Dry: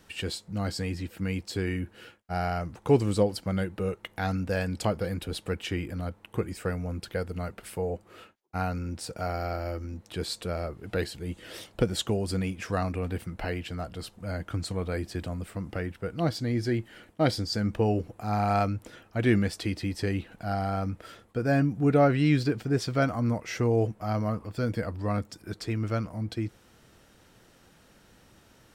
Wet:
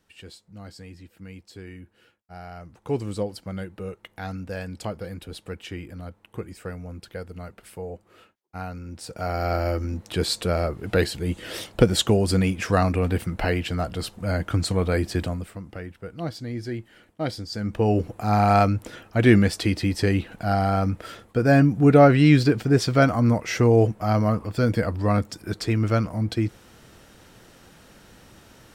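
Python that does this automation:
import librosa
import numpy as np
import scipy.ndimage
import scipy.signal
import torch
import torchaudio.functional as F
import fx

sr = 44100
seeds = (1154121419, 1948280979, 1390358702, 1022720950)

y = fx.gain(x, sr, db=fx.line((2.46, -11.0), (3.0, -4.0), (8.85, -4.0), (9.56, 8.5), (15.22, 8.5), (15.63, -3.5), (17.48, -3.5), (18.03, 7.5)))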